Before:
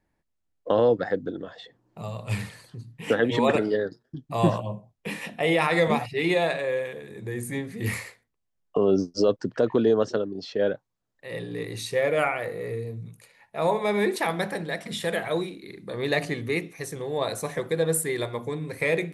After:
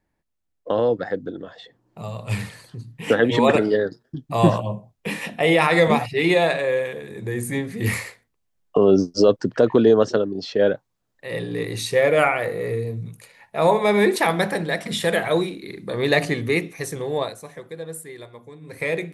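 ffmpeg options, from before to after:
-filter_complex "[0:a]asplit=3[a][b][c];[a]atrim=end=17.34,asetpts=PTS-STARTPTS,afade=t=out:st=17.17:d=0.17:silence=0.266073[d];[b]atrim=start=17.34:end=18.61,asetpts=PTS-STARTPTS,volume=-11.5dB[e];[c]atrim=start=18.61,asetpts=PTS-STARTPTS,afade=t=in:d=0.17:silence=0.266073[f];[d][e][f]concat=n=3:v=0:a=1,dynaudnorm=f=350:g=13:m=7dB"

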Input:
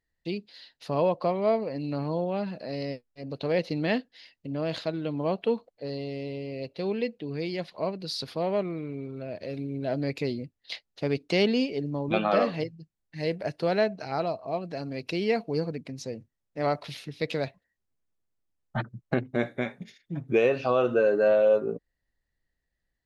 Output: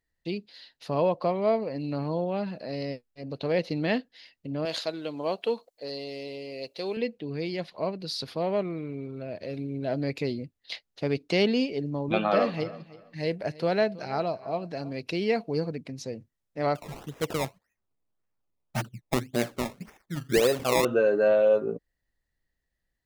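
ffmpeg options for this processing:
-filter_complex "[0:a]asettb=1/sr,asplit=3[a][b][c];[a]atrim=end=4.654[d];[b]atrim=start=4.65:end=6.97,asetpts=PTS-STARTPTS,afade=t=in:d=0.004:c=qsin,afade=t=out:st=2.316:d=0.004:c=qsin,bass=f=250:g=-13,treble=f=4k:g=11[e];[c]atrim=start=6.966[f];[d][e]acrossfade=d=0.004:c1=hsin:c2=qsin[g];[g][f]acrossfade=d=0.004:c1=qsin:c2=hsin,asettb=1/sr,asplit=3[h][i][j];[h]atrim=end=11.974[k];[i]atrim=start=11.97:end=14.93,asetpts=PTS-STARTPTS,afade=t=in:d=0.004:c=qsin,afade=t=out:st=2.956:d=0.004:c=qsin,aecho=1:1:323|646:0.112|0.0224,atrim=end_sample=130536[l];[j]atrim=start=14.926[m];[k][l]acrossfade=d=0.004:c1=hsin:c2=qsin[n];[n][m]acrossfade=d=0.004:c1=qsin:c2=hsin,asettb=1/sr,asplit=3[o][p][q];[o]atrim=end=16.754[r];[p]atrim=start=16.75:end=20.85,asetpts=PTS-STARTPTS,afade=t=in:d=0.004:c=qsin,afade=t=out:st=4.096:d=0.004:c=qsin,acrusher=samples=20:mix=1:aa=0.000001:lfo=1:lforange=20:lforate=1.8[s];[q]atrim=start=20.846[t];[r][s]acrossfade=d=0.004:c1=hsin:c2=qsin[u];[u][t]acrossfade=d=0.004:c1=qsin:c2=hsin"

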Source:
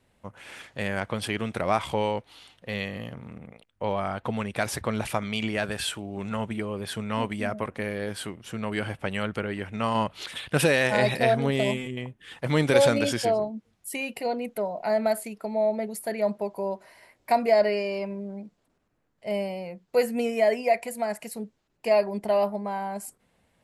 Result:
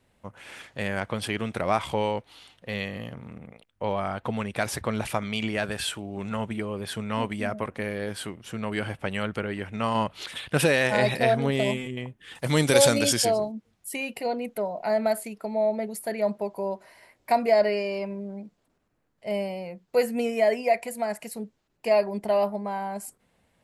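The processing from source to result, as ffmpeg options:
-filter_complex "[0:a]asettb=1/sr,asplit=3[a][b][c];[a]atrim=end=12.354[d];[b]atrim=start=12.35:end=13.52,asetpts=PTS-STARTPTS,afade=t=in:d=0.004:c=qsin,afade=t=out:st=1.166:d=0.004:c=qsin,bass=f=250:g=1,treble=f=4k:g=12[e];[c]atrim=start=13.516[f];[d][e]acrossfade=d=0.004:c1=hsin:c2=qsin[g];[g][f]acrossfade=d=0.004:c1=qsin:c2=hsin"

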